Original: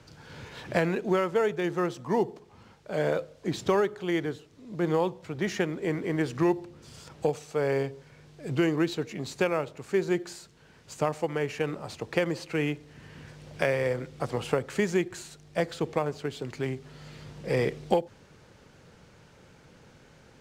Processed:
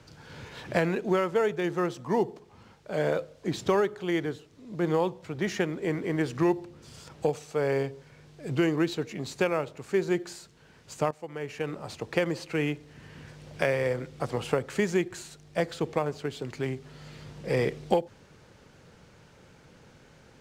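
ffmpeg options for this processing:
ffmpeg -i in.wav -filter_complex "[0:a]asplit=2[link_01][link_02];[link_01]atrim=end=11.11,asetpts=PTS-STARTPTS,afade=type=out:start_time=11.106:duration=0.004:curve=hsin:silence=0.158489[link_03];[link_02]atrim=start=11.11,asetpts=PTS-STARTPTS,afade=type=in:duration=0.78:silence=0.158489[link_04];[link_03][link_04]concat=n=2:v=0:a=1" out.wav

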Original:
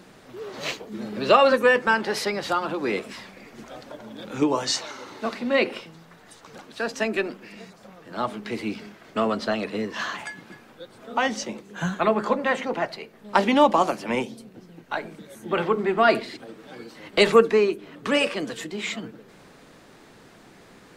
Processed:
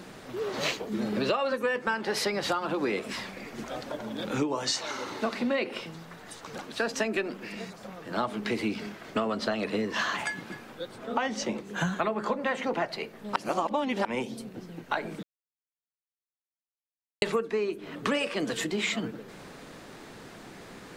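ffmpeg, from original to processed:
ffmpeg -i in.wav -filter_complex "[0:a]asettb=1/sr,asplit=3[link_01][link_02][link_03];[link_01]atrim=end=10.964[link_04];[link_02]atrim=start=10.96:end=11.67,asetpts=PTS-STARTPTS,afade=type=in:duration=0.004:curve=qsin,afade=type=out:start_time=0.706:duration=0.004:curve=qsin,highshelf=frequency=4800:gain=-6[link_05];[link_03]atrim=start=11.666[link_06];[link_04][link_05]acrossfade=duration=0.004:curve1=hsin:curve2=qsin[link_07];[link_07][link_06]acrossfade=duration=0.004:curve1=qsin:curve2=hsin,asplit=5[link_08][link_09][link_10][link_11][link_12];[link_08]atrim=end=13.362[link_13];[link_09]atrim=start=13.358:end=14.052,asetpts=PTS-STARTPTS,areverse[link_14];[link_10]atrim=start=14.048:end=15.23,asetpts=PTS-STARTPTS,afade=type=out:start_time=1.178:duration=0.004:curve=hsin[link_15];[link_11]atrim=start=15.23:end=17.22,asetpts=PTS-STARTPTS,volume=0[link_16];[link_12]atrim=start=17.22,asetpts=PTS-STARTPTS,afade=type=in:duration=0.004:curve=hsin[link_17];[link_13][link_14]acrossfade=duration=0.004:curve1=hsin:curve2=hsin[link_18];[link_15][link_16][link_17]concat=n=3:v=0:a=1[link_19];[link_18][link_19]acrossfade=duration=0.004:curve1=hsin:curve2=hsin,acompressor=threshold=-29dB:ratio=10,volume=4dB" out.wav

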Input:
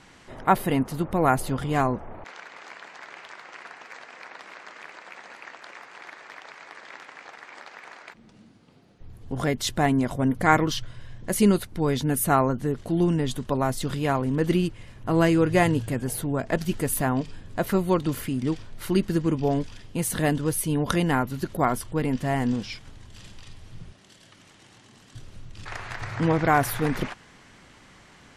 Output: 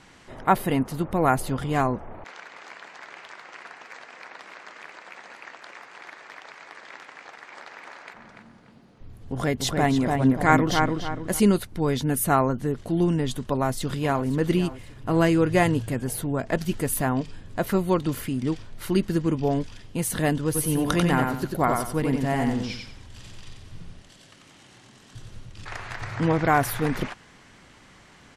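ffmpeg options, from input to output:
ffmpeg -i in.wav -filter_complex "[0:a]asettb=1/sr,asplit=3[link_01][link_02][link_03];[link_01]atrim=end=7.234[link_04];[link_02]atrim=start=7.23:end=11.4,asetpts=PTS-STARTPTS,afade=type=in:duration=0.004:curve=qsin,afade=type=out:start_time=4.166:duration=0.004:curve=qsin,asplit=2[link_05][link_06];[link_06]adelay=291,lowpass=frequency=2000:poles=1,volume=-3dB,asplit=2[link_07][link_08];[link_08]adelay=291,lowpass=frequency=2000:poles=1,volume=0.37,asplit=2[link_09][link_10];[link_10]adelay=291,lowpass=frequency=2000:poles=1,volume=0.37,asplit=2[link_11][link_12];[link_12]adelay=291,lowpass=frequency=2000:poles=1,volume=0.37,asplit=2[link_13][link_14];[link_14]adelay=291,lowpass=frequency=2000:poles=1,volume=0.37[link_15];[link_05][link_07][link_09][link_11][link_13][link_15]amix=inputs=6:normalize=0,atrim=end_sample=183897[link_16];[link_03]atrim=start=11.396[link_17];[link_04][link_16]acrossfade=duration=0.004:curve1=hsin:curve2=qsin[link_18];[link_18][link_17]acrossfade=duration=0.004:curve1=qsin:curve2=hsin,asplit=2[link_19][link_20];[link_20]afade=type=in:start_time=13.39:duration=0.01,afade=type=out:start_time=14.25:duration=0.01,aecho=0:1:530|1060|1590|2120:0.177828|0.0711312|0.0284525|0.011381[link_21];[link_19][link_21]amix=inputs=2:normalize=0,asplit=3[link_22][link_23][link_24];[link_22]afade=type=out:start_time=20.54:duration=0.02[link_25];[link_23]aecho=1:1:92|184|276|368:0.631|0.189|0.0568|0.017,afade=type=in:start_time=20.54:duration=0.02,afade=type=out:start_time=25.52:duration=0.02[link_26];[link_24]afade=type=in:start_time=25.52:duration=0.02[link_27];[link_25][link_26][link_27]amix=inputs=3:normalize=0" out.wav

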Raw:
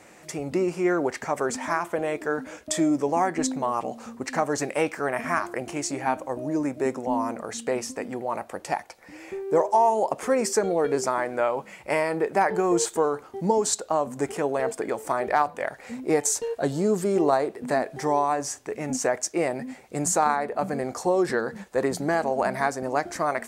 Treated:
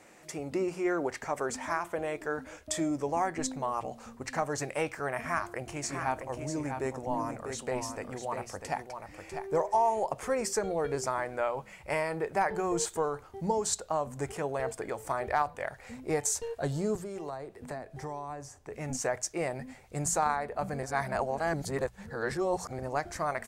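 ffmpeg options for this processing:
ffmpeg -i in.wav -filter_complex "[0:a]asplit=3[link_01][link_02][link_03];[link_01]afade=type=out:start_time=5.82:duration=0.02[link_04];[link_02]aecho=1:1:647:0.447,afade=type=in:start_time=5.82:duration=0.02,afade=type=out:start_time=10.04:duration=0.02[link_05];[link_03]afade=type=in:start_time=10.04:duration=0.02[link_06];[link_04][link_05][link_06]amix=inputs=3:normalize=0,asettb=1/sr,asplit=3[link_07][link_08][link_09];[link_07]atrim=end=16.954[link_10];[link_08]atrim=start=16.95:end=18.74,asetpts=PTS-STARTPTS,afade=type=in:duration=0.004:curve=qsin,afade=type=out:start_time=1.786:duration=0.004:curve=qsin,acrossover=split=340|1200[link_11][link_12][link_13];[link_11]acompressor=threshold=-38dB:ratio=4[link_14];[link_12]acompressor=threshold=-34dB:ratio=4[link_15];[link_13]acompressor=threshold=-45dB:ratio=4[link_16];[link_14][link_15][link_16]amix=inputs=3:normalize=0[link_17];[link_09]atrim=start=18.736[link_18];[link_10][link_17]acrossfade=duration=0.004:curve1=hsin:curve2=qsin[link_19];[link_19][link_18]acrossfade=duration=0.004:curve1=qsin:curve2=hsin,asplit=3[link_20][link_21][link_22];[link_20]atrim=end=20.832[link_23];[link_21]atrim=start=20.828:end=22.792,asetpts=PTS-STARTPTS,areverse[link_24];[link_22]atrim=start=22.788[link_25];[link_23][link_24]acrossfade=duration=0.004:curve1=hsin:curve2=hsin[link_26];[link_26][link_25]acrossfade=duration=0.004:curve1=hsin:curve2=hsin,bandreject=frequency=60:width_type=h:width=6,bandreject=frequency=120:width_type=h:width=6,bandreject=frequency=180:width_type=h:width=6,asubboost=boost=9:cutoff=83,volume=-5.5dB" out.wav

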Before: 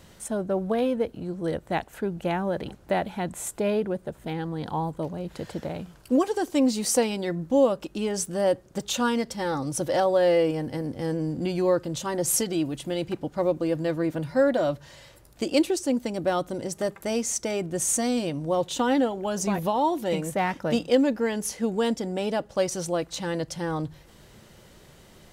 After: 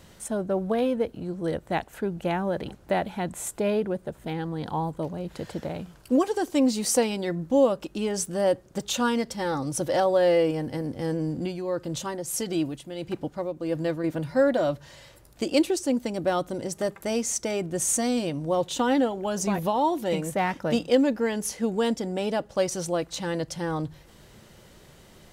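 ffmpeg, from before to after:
ffmpeg -i in.wav -filter_complex "[0:a]asettb=1/sr,asplit=3[link_01][link_02][link_03];[link_01]atrim=end=11.334[link_04];[link_02]atrim=start=11.33:end=14.04,asetpts=PTS-STARTPTS,afade=type=in:duration=0.004:curve=qsin,afade=type=out:start_time=2.706:duration=0.004:curve=qsin,tremolo=f=1.6:d=0.62[link_05];[link_03]atrim=start=14.036[link_06];[link_04][link_05]acrossfade=duration=0.004:curve1=hsin:curve2=qsin[link_07];[link_07][link_06]acrossfade=duration=0.004:curve1=qsin:curve2=hsin" out.wav

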